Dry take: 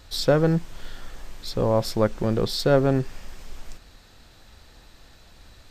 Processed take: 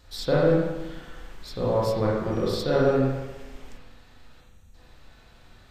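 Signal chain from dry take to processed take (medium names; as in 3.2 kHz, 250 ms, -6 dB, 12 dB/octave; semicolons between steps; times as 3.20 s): 2.31–2.94 s: whistle 5.7 kHz -50 dBFS; 4.41–4.74 s: time-frequency box 240–5600 Hz -18 dB; spring tank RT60 1.1 s, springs 34/38/46 ms, chirp 60 ms, DRR -5.5 dB; trim -7.5 dB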